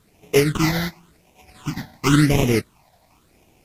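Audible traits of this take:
aliases and images of a low sample rate 1,700 Hz, jitter 20%
phaser sweep stages 8, 0.93 Hz, lowest notch 350–1,400 Hz
a quantiser's noise floor 12 bits, dither triangular
AAC

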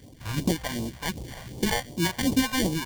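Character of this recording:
aliases and images of a low sample rate 1,300 Hz, jitter 0%
phaser sweep stages 2, 2.7 Hz, lowest notch 260–1,600 Hz

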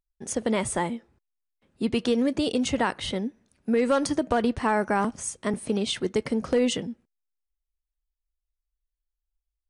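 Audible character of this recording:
background noise floor −86 dBFS
spectral slope −4.0 dB per octave

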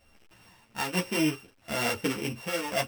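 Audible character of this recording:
a buzz of ramps at a fixed pitch in blocks of 16 samples
tremolo triangle 1.1 Hz, depth 60%
a shimmering, thickened sound

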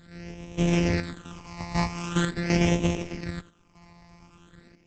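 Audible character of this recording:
a buzz of ramps at a fixed pitch in blocks of 256 samples
phaser sweep stages 8, 0.44 Hz, lowest notch 430–1,400 Hz
chopped level 0.8 Hz, depth 60%, duty 80%
Opus

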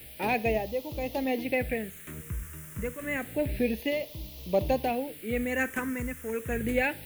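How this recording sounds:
tremolo triangle 0.92 Hz, depth 70%
a quantiser's noise floor 8 bits, dither triangular
phaser sweep stages 4, 0.29 Hz, lowest notch 710–1,500 Hz

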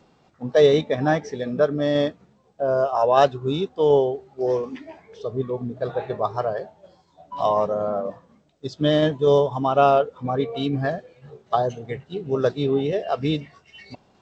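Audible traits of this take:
tremolo saw down 4.1 Hz, depth 30%
G.722

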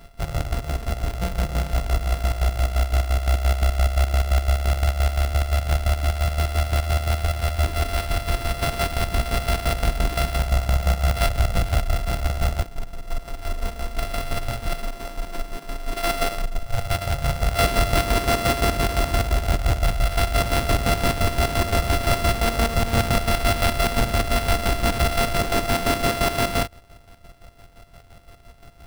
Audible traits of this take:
a buzz of ramps at a fixed pitch in blocks of 64 samples
chopped level 5.8 Hz, depth 60%, duty 45%
aliases and images of a low sample rate 6,800 Hz, jitter 0%

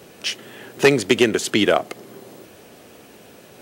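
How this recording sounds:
background noise floor −47 dBFS
spectral slope −4.0 dB per octave

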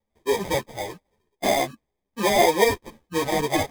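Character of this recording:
aliases and images of a low sample rate 1,400 Hz, jitter 0%
a shimmering, thickened sound

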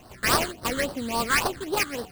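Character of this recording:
aliases and images of a low sample rate 3,600 Hz, jitter 20%
phaser sweep stages 8, 3.6 Hz, lowest notch 710–2,300 Hz

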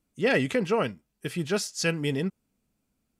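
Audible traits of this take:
background noise floor −78 dBFS
spectral slope −4.5 dB per octave

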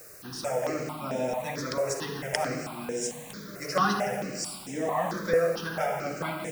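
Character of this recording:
a quantiser's noise floor 8 bits, dither triangular
notches that jump at a steady rate 4.5 Hz 890–4,400 Hz

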